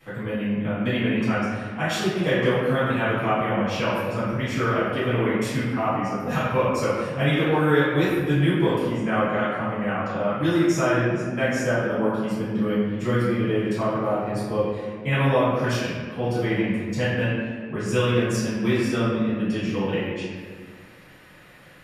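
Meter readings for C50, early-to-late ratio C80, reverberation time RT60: -2.0 dB, 1.0 dB, 1.6 s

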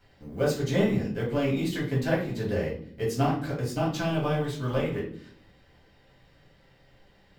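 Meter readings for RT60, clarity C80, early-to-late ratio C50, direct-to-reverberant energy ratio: 0.55 s, 11.0 dB, 6.5 dB, -6.0 dB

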